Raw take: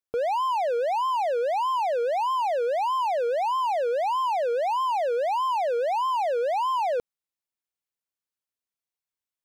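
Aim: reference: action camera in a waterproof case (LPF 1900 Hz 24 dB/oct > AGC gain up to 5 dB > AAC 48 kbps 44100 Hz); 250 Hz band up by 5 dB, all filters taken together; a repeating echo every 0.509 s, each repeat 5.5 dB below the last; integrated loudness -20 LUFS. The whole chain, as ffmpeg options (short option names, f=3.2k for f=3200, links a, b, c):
-af "lowpass=f=1.9k:w=0.5412,lowpass=f=1.9k:w=1.3066,equalizer=f=250:t=o:g=7.5,aecho=1:1:509|1018|1527|2036|2545|3054|3563:0.531|0.281|0.149|0.079|0.0419|0.0222|0.0118,dynaudnorm=m=5dB,volume=3.5dB" -ar 44100 -c:a aac -b:a 48k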